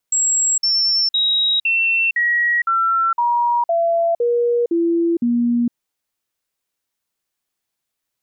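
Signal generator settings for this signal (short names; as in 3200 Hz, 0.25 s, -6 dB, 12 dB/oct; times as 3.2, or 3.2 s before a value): stepped sine 7630 Hz down, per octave 2, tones 11, 0.46 s, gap 0.05 s -14 dBFS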